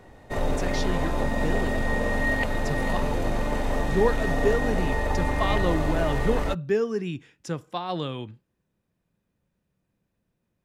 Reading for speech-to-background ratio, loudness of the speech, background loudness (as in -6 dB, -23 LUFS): -2.5 dB, -30.0 LUFS, -27.5 LUFS